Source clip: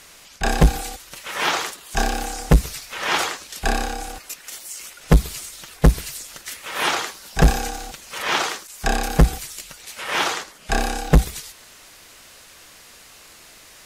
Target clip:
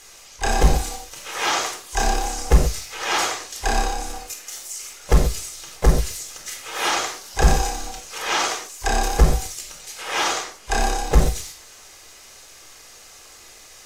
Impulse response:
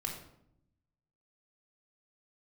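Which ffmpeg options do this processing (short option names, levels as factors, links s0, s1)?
-filter_complex "[0:a]equalizer=f=160:t=o:w=0.67:g=-10,equalizer=f=630:t=o:w=0.67:g=4,equalizer=f=6300:t=o:w=0.67:g=8[s0];[1:a]atrim=start_sample=2205,atrim=end_sample=6174[s1];[s0][s1]afir=irnorm=-1:irlink=0,asplit=2[s2][s3];[s3]asetrate=55563,aresample=44100,atempo=0.793701,volume=0.2[s4];[s2][s4]amix=inputs=2:normalize=0,volume=0.75"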